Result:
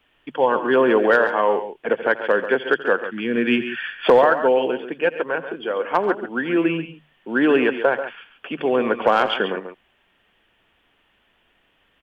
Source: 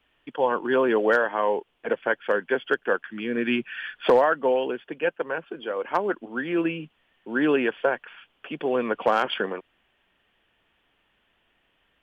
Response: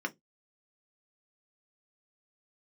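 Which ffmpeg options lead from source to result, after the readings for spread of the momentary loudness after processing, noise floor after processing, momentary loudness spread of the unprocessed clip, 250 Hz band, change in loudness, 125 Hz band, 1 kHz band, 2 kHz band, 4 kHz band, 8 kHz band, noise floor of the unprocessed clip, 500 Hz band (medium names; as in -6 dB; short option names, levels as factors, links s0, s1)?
10 LU, -64 dBFS, 10 LU, +5.5 dB, +5.0 dB, +5.0 dB, +5.0 dB, +5.0 dB, +5.5 dB, no reading, -69 dBFS, +5.0 dB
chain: -filter_complex "[0:a]bandreject=f=50:t=h:w=6,bandreject=f=100:t=h:w=6,bandreject=f=150:t=h:w=6,acontrast=25,asplit=2[s0][s1];[s1]aecho=0:1:84|128|139:0.126|0.106|0.282[s2];[s0][s2]amix=inputs=2:normalize=0"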